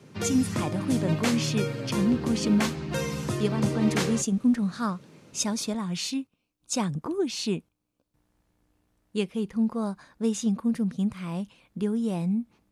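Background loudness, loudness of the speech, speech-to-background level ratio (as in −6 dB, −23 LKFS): −30.0 LKFS, −28.5 LKFS, 1.5 dB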